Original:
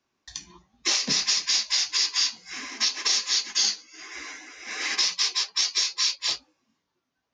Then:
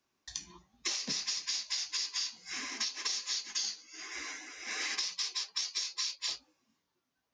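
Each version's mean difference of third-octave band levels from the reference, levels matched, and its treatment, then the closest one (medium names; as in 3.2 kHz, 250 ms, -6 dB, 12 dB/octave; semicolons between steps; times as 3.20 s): 3.0 dB: treble shelf 7.2 kHz +7 dB; compression 5:1, threshold -29 dBFS, peak gain reduction 11.5 dB; trim -4 dB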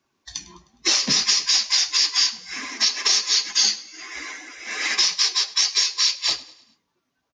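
1.0 dB: coarse spectral quantiser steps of 15 dB; feedback delay 103 ms, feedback 46%, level -19.5 dB; trim +5 dB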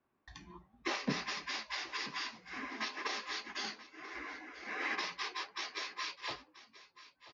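9.0 dB: low-pass 1.6 kHz 12 dB/octave; on a send: delay 984 ms -17 dB; on the sum: trim -1 dB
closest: second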